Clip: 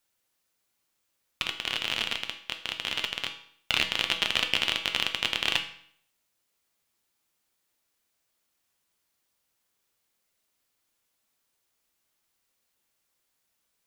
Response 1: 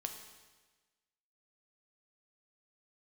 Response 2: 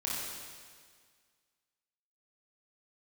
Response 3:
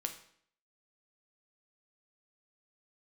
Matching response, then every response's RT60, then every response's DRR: 3; 1.3 s, 1.8 s, 0.60 s; 4.0 dB, -6.5 dB, 5.0 dB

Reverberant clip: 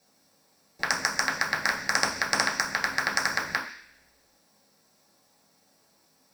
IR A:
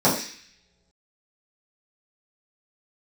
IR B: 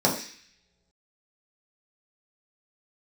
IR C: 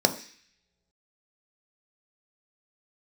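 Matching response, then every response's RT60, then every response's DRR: B; no single decay rate, no single decay rate, no single decay rate; -10.0 dB, -4.0 dB, 6.0 dB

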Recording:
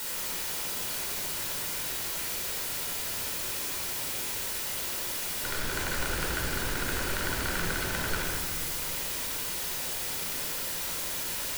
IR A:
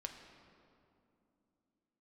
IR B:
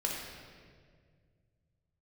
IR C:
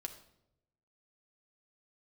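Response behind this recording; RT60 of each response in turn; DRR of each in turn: B; 2.7 s, 1.9 s, 0.85 s; 3.5 dB, -2.5 dB, 4.5 dB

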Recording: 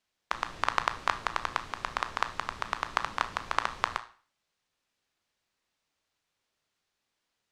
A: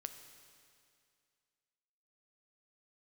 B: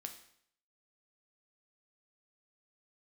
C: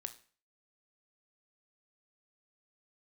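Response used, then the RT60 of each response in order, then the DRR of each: C; 2.3 s, 0.65 s, 0.40 s; 7.5 dB, 4.5 dB, 9.0 dB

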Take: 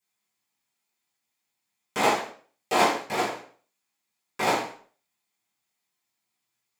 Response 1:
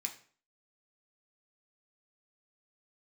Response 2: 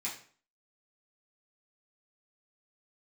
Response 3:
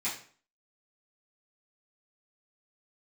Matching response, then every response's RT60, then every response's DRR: 3; 0.45 s, 0.45 s, 0.45 s; 2.5 dB, -7.5 dB, -12.0 dB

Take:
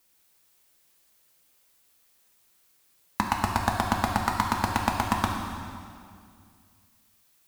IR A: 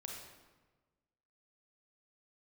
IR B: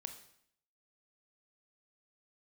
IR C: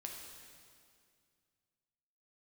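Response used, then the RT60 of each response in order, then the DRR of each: C; 1.3 s, 0.65 s, 2.2 s; -0.5 dB, 6.5 dB, 0.0 dB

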